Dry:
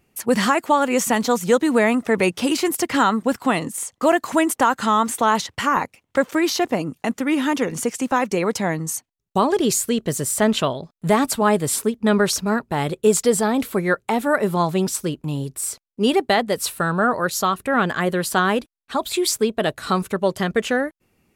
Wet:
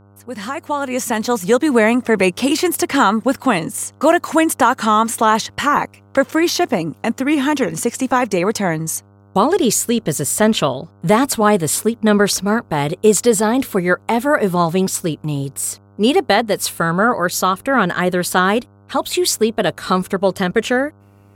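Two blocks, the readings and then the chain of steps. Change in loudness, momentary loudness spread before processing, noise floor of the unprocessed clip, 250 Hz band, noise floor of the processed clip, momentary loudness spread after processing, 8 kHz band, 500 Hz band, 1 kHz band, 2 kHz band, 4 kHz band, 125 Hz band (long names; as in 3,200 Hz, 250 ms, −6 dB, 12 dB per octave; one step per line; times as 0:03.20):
+3.5 dB, 7 LU, −73 dBFS, +3.5 dB, −48 dBFS, 8 LU, +3.5 dB, +3.5 dB, +3.5 dB, +3.5 dB, +3.5 dB, +4.0 dB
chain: fade in at the beginning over 1.79 s
hum with harmonics 100 Hz, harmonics 15, −52 dBFS −6 dB per octave
level +4 dB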